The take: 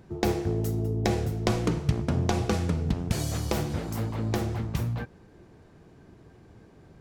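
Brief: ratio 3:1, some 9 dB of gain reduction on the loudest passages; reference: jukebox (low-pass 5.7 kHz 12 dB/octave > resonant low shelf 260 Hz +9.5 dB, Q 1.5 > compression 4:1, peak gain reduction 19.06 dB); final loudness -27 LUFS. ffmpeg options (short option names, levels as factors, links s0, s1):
-af "acompressor=threshold=0.0282:ratio=3,lowpass=5700,lowshelf=f=260:t=q:w=1.5:g=9.5,acompressor=threshold=0.0126:ratio=4,volume=4.47"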